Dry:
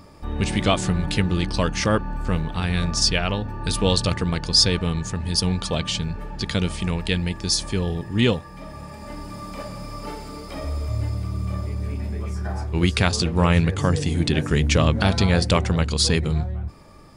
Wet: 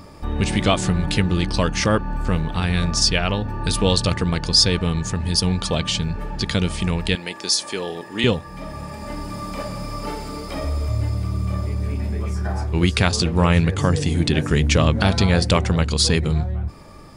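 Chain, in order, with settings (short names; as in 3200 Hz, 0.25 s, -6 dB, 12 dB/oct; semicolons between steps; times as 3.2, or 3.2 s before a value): 7.15–8.24 HPF 400 Hz 12 dB/oct; in parallel at -2.5 dB: compressor, threshold -27 dBFS, peak gain reduction 14 dB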